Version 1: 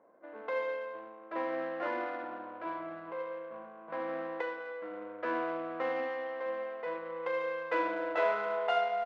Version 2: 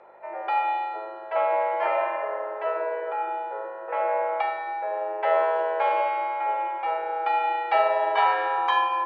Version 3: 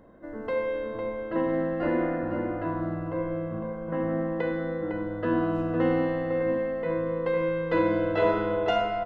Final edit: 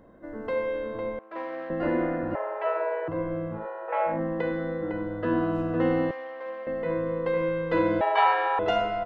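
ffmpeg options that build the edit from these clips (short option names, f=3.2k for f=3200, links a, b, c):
-filter_complex "[0:a]asplit=2[a][b];[1:a]asplit=3[c][d][e];[2:a]asplit=6[f][g][h][i][j][k];[f]atrim=end=1.192[l];[a]atrim=start=1.188:end=1.702[m];[g]atrim=start=1.698:end=2.352[n];[c]atrim=start=2.348:end=3.082[o];[h]atrim=start=3.078:end=3.67[p];[d]atrim=start=3.51:end=4.21[q];[i]atrim=start=4.05:end=6.112[r];[b]atrim=start=6.108:end=6.672[s];[j]atrim=start=6.668:end=8.012[t];[e]atrim=start=8.008:end=8.592[u];[k]atrim=start=8.588[v];[l][m]acrossfade=d=0.004:c1=hsin:c2=hsin[w];[w][n]acrossfade=d=0.004:c1=hsin:c2=hsin[x];[x][o]acrossfade=d=0.004:c1=hsin:c2=hsin[y];[y][p]acrossfade=d=0.004:c1=hsin:c2=hsin[z];[z][q]acrossfade=d=0.16:c1=tri:c2=tri[aa];[aa][r]acrossfade=d=0.16:c1=tri:c2=tri[ab];[ab][s]acrossfade=d=0.004:c1=hsin:c2=hsin[ac];[ac][t]acrossfade=d=0.004:c1=hsin:c2=hsin[ad];[ad][u]acrossfade=d=0.004:c1=hsin:c2=hsin[ae];[ae][v]acrossfade=d=0.004:c1=hsin:c2=hsin"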